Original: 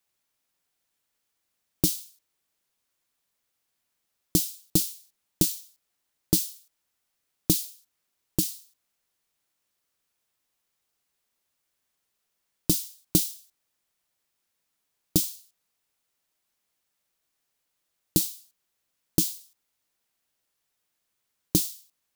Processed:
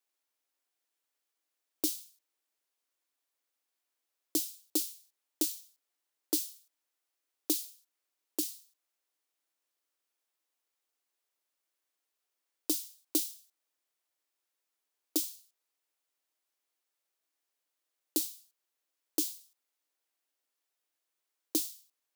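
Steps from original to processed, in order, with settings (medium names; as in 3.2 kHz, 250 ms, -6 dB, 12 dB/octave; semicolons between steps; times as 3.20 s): elliptic high-pass 280 Hz; trim -6 dB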